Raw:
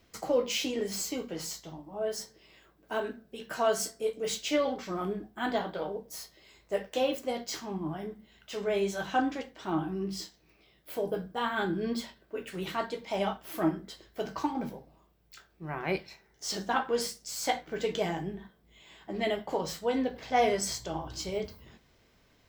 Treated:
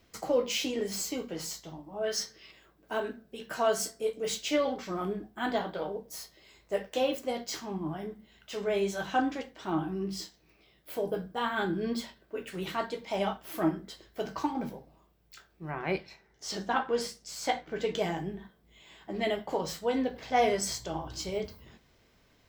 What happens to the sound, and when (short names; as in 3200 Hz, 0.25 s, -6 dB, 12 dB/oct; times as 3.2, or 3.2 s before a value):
2.04–2.51 spectral gain 1100–6700 Hz +8 dB
15.71–17.95 high shelf 7900 Hz -10 dB